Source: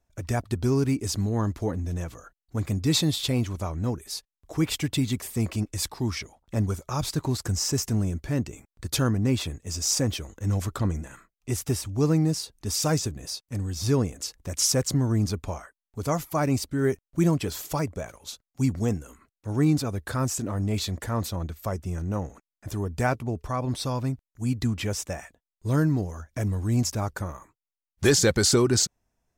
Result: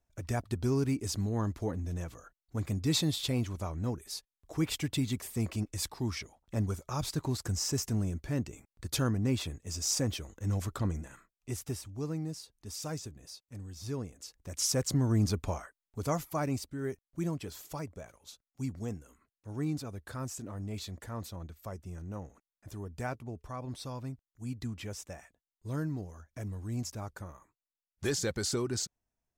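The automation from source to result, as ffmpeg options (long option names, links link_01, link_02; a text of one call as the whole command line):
ffmpeg -i in.wav -af "volume=6.5dB,afade=type=out:start_time=11.01:duration=1.05:silence=0.398107,afade=type=in:start_time=14.22:duration=1.23:silence=0.237137,afade=type=out:start_time=15.45:duration=1.33:silence=0.298538" out.wav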